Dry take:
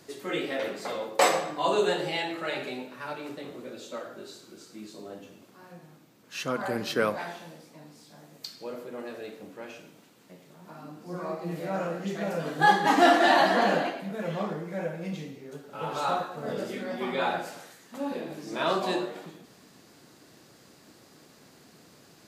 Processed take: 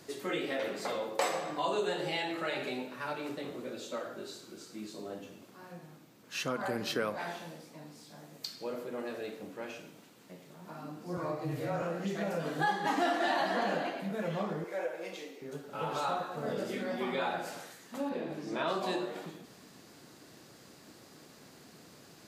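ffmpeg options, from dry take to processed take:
-filter_complex "[0:a]asettb=1/sr,asplit=3[s0][s1][s2];[s0]atrim=end=11.174[s3];[s1]atrim=start=11.17:end=11.82,asetpts=PTS-STARTPTS,afade=t=in:d=0.004:c=qsin,afade=t=out:st=0.646:d=0.004:c=qsin,afreqshift=-28[s4];[s2]atrim=start=11.816[s5];[s3][s4]acrossfade=d=0.004:c1=hsin:c2=qsin[s6];[s6][s5]acrossfade=d=0.004:c1=qsin:c2=hsin,asettb=1/sr,asplit=3[s7][s8][s9];[s7]atrim=end=14.644[s10];[s8]atrim=start=14.64:end=15.42,asetpts=PTS-STARTPTS,afade=t=in:d=0.004:c=qsin,afade=t=out:st=0.776:d=0.004:c=qsin,highpass=f=350:w=0.5412,highpass=f=350:w=1.3066[s11];[s9]atrim=start=15.416[s12];[s10][s11]acrossfade=d=0.004:c1=hsin:c2=qsin[s13];[s13][s12]acrossfade=d=0.004:c1=qsin:c2=hsin,asettb=1/sr,asplit=3[s14][s15][s16];[s14]atrim=end=18.094[s17];[s15]atrim=start=18.09:end=18.68,asetpts=PTS-STARTPTS,afade=t=in:d=0.004:c=qsin,afade=t=out:st=0.586:d=0.004:c=qsin,highshelf=f=5200:g=-10.5[s18];[s16]atrim=start=18.676[s19];[s17][s18]acrossfade=d=0.004:c1=hsin:c2=qsin[s20];[s20][s19]acrossfade=d=0.004:c1=qsin:c2=hsin,acompressor=threshold=0.0251:ratio=2.5"

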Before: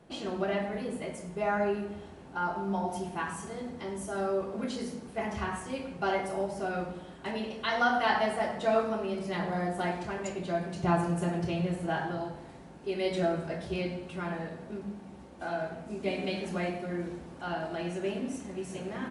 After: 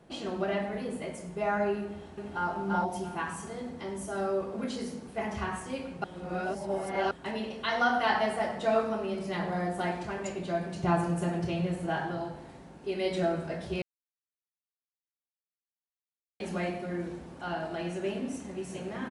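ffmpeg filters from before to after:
-filter_complex "[0:a]asplit=2[s0][s1];[s1]afade=t=in:st=1.83:d=0.01,afade=t=out:st=2.5:d=0.01,aecho=0:1:340|680|1020:0.891251|0.133688|0.0200531[s2];[s0][s2]amix=inputs=2:normalize=0,asplit=5[s3][s4][s5][s6][s7];[s3]atrim=end=6.042[s8];[s4]atrim=start=6.038:end=7.112,asetpts=PTS-STARTPTS,areverse[s9];[s5]atrim=start=7.108:end=13.82,asetpts=PTS-STARTPTS,afade=t=out:st=6.708:d=0.004:c=hsin[s10];[s6]atrim=start=13.82:end=16.4,asetpts=PTS-STARTPTS,volume=0[s11];[s7]atrim=start=16.4,asetpts=PTS-STARTPTS,afade=t=in:d=0.004:c=hsin[s12];[s8][s9]acrossfade=d=0.004:c1=hsin:c2=hsin[s13];[s10][s11][s12]concat=n=3:v=0:a=1[s14];[s13][s14]acrossfade=d=0.004:c1=hsin:c2=hsin"

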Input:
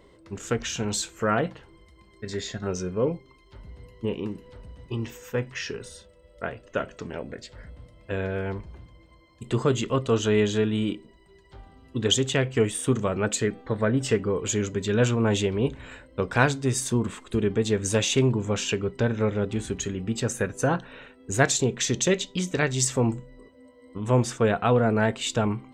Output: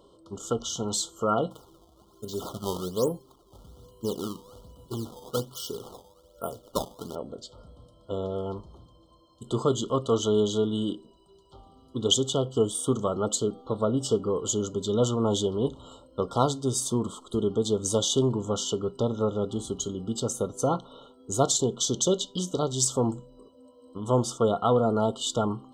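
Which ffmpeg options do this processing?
-filter_complex "[0:a]asplit=3[s0][s1][s2];[s0]afade=t=out:st=1.5:d=0.02[s3];[s1]acrusher=samples=18:mix=1:aa=0.000001:lfo=1:lforange=28.8:lforate=1.2,afade=t=in:st=1.5:d=0.02,afade=t=out:st=7.14:d=0.02[s4];[s2]afade=t=in:st=7.14:d=0.02[s5];[s3][s4][s5]amix=inputs=3:normalize=0,lowshelf=f=140:g=-9,afftfilt=real='re*(1-between(b*sr/4096,1400,2900))':imag='im*(1-between(b*sr/4096,1400,2900))':win_size=4096:overlap=0.75"

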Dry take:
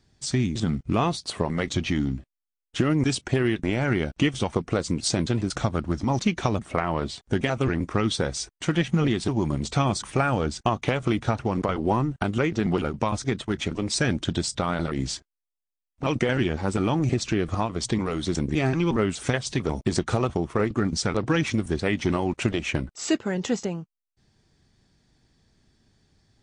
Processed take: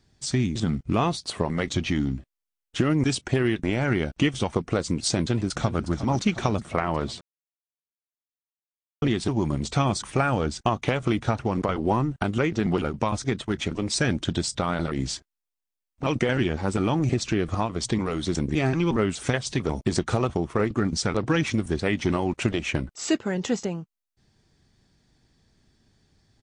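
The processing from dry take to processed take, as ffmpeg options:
-filter_complex "[0:a]asplit=2[s0][s1];[s1]afade=t=in:st=5.21:d=0.01,afade=t=out:st=5.85:d=0.01,aecho=0:1:360|720|1080|1440|1800|2160|2520|2880:0.237137|0.154139|0.100191|0.0651239|0.0423305|0.0275148|0.0178846|0.011625[s2];[s0][s2]amix=inputs=2:normalize=0,asplit=3[s3][s4][s5];[s3]atrim=end=7.21,asetpts=PTS-STARTPTS,afade=t=out:st=7.206:d=0.004:c=hsin[s6];[s4]atrim=start=7.21:end=9.02,asetpts=PTS-STARTPTS,volume=0[s7];[s5]atrim=start=9.02,asetpts=PTS-STARTPTS,afade=t=in:d=0.004:c=hsin[s8];[s6][s7][s8]concat=n=3:v=0:a=1"

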